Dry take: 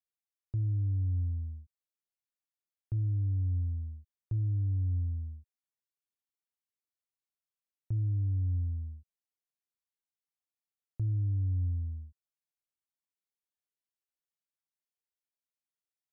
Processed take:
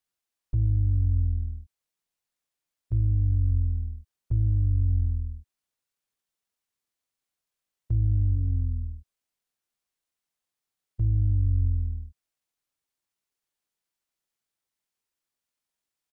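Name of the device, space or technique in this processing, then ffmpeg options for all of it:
octave pedal: -filter_complex "[0:a]asplit=3[a][b][c];[a]afade=t=out:st=8.34:d=0.02[d];[b]aecho=1:1:4:0.53,afade=t=in:st=8.34:d=0.02,afade=t=out:st=8.82:d=0.02[e];[c]afade=t=in:st=8.82:d=0.02[f];[d][e][f]amix=inputs=3:normalize=0,asplit=2[g][h];[h]asetrate=22050,aresample=44100,atempo=2,volume=-3dB[i];[g][i]amix=inputs=2:normalize=0,volume=5.5dB"

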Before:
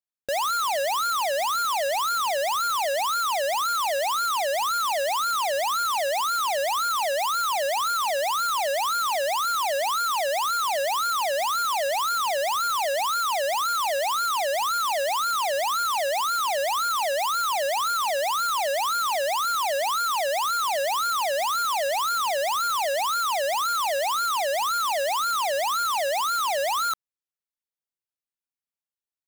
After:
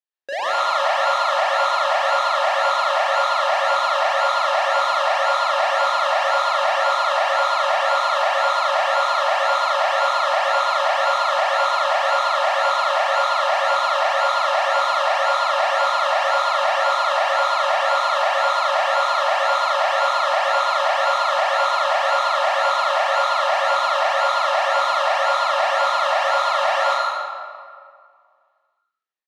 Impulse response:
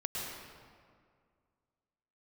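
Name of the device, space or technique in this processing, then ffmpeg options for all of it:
station announcement: -filter_complex "[0:a]highpass=390,lowpass=4.1k,equalizer=f=1.8k:t=o:w=0.2:g=6.5,aecho=1:1:37.9|131.2:0.891|0.282[a];[1:a]atrim=start_sample=2205[b];[a][b]afir=irnorm=-1:irlink=0"

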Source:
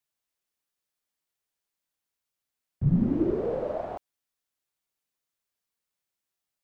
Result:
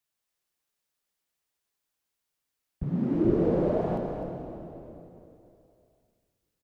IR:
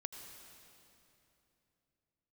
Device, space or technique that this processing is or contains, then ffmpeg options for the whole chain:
cave: -filter_complex "[0:a]aecho=1:1:254:0.335[a];[1:a]atrim=start_sample=2205[b];[a][b]afir=irnorm=-1:irlink=0,asettb=1/sr,asplit=3[c][d][e];[c]atrim=end=2.834[f];[d]atrim=start=2.83:end=3.25,asetpts=PTS-STARTPTS,afade=t=in:d=0.004:c=qsin,afade=t=out:st=0.416:d=0.004:c=qsin,highpass=260[g];[e]atrim=start=3.246[h];[f][g]acrossfade=d=0.004:c1=hsin:c2=qsin[i];[i][h]acrossfade=d=0.004:c1=qsin:c2=hsin,asplit=5[j][k][l][m][n];[k]adelay=318,afreqshift=-74,volume=-17dB[o];[l]adelay=636,afreqshift=-148,volume=-23.2dB[p];[m]adelay=954,afreqshift=-222,volume=-29.4dB[q];[n]adelay=1272,afreqshift=-296,volume=-35.6dB[r];[j][o][p][q][r]amix=inputs=5:normalize=0,volume=5dB"

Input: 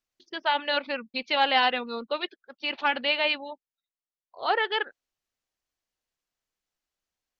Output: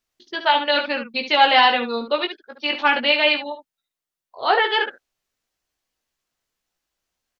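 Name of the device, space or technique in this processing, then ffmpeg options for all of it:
slapback doubling: -filter_complex "[0:a]asplit=3[a][b][c];[b]adelay=17,volume=-5dB[d];[c]adelay=70,volume=-9dB[e];[a][d][e]amix=inputs=3:normalize=0,volume=6dB"

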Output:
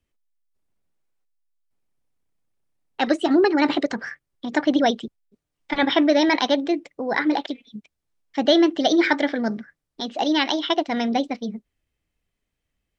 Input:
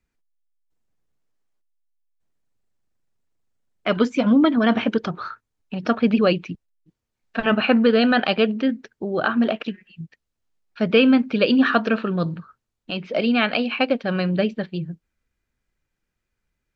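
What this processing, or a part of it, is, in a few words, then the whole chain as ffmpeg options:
nightcore: -af "asetrate=56889,aresample=44100,volume=-1dB"

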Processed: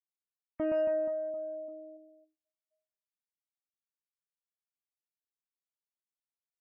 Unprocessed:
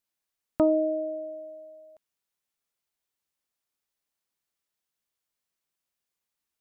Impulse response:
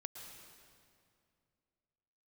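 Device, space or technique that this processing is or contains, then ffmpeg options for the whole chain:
limiter into clipper: -af "alimiter=limit=-19.5dB:level=0:latency=1:release=30,asoftclip=type=hard:threshold=-21.5dB,aecho=1:1:120|276|478.8|742.4|1085:0.631|0.398|0.251|0.158|0.1,afftdn=nr=35:nf=-45,volume=-4.5dB"

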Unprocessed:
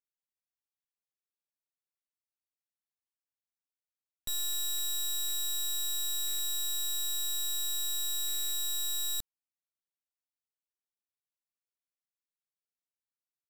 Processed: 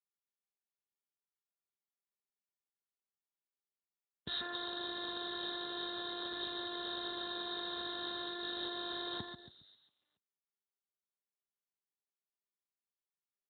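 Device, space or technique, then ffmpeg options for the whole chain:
mobile call with aggressive noise cancelling: -af "highpass=110,lowshelf=f=72:g=4.5,aecho=1:1:137|274|411|548|685|822|959:0.596|0.328|0.18|0.0991|0.0545|0.03|0.0165,afftdn=nr=20:nf=-51,volume=11.5dB" -ar 8000 -c:a libopencore_amrnb -b:a 7950

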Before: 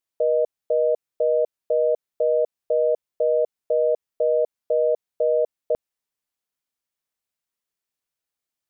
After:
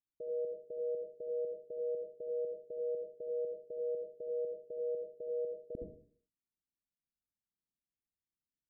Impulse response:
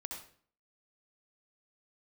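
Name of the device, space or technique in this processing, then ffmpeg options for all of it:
next room: -filter_complex "[0:a]lowpass=f=300:w=0.5412,lowpass=f=300:w=1.3066[a];[1:a]atrim=start_sample=2205[b];[a][b]afir=irnorm=-1:irlink=0,volume=1dB"

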